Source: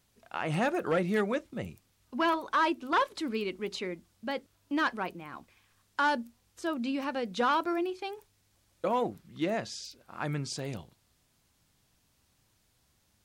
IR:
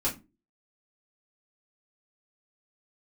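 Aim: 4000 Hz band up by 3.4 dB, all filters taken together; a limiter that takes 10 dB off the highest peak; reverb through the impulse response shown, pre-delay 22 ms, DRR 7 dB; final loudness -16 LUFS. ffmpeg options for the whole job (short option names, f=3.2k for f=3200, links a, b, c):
-filter_complex "[0:a]equalizer=f=4k:t=o:g=4.5,alimiter=level_in=4dB:limit=-24dB:level=0:latency=1,volume=-4dB,asplit=2[a][b];[1:a]atrim=start_sample=2205,adelay=22[c];[b][c]afir=irnorm=-1:irlink=0,volume=-14.5dB[d];[a][d]amix=inputs=2:normalize=0,volume=20.5dB"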